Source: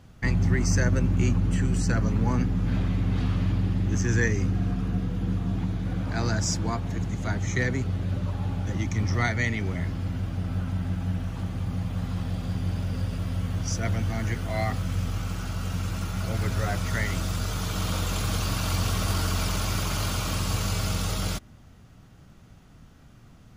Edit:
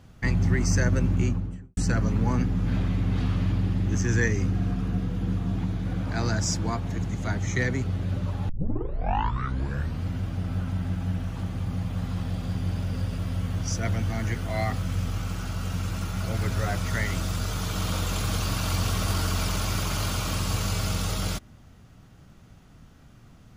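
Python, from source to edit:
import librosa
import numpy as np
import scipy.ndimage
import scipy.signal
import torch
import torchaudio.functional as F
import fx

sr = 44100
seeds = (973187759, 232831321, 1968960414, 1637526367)

y = fx.studio_fade_out(x, sr, start_s=1.08, length_s=0.69)
y = fx.edit(y, sr, fx.tape_start(start_s=8.49, length_s=1.59), tone=tone)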